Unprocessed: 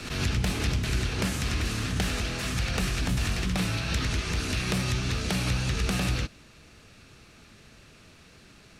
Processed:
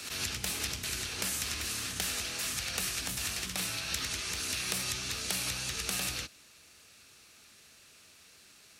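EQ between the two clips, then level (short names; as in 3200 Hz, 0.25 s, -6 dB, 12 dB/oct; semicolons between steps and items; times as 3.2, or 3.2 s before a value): RIAA curve recording; bell 75 Hz +8.5 dB 0.59 oct; -7.5 dB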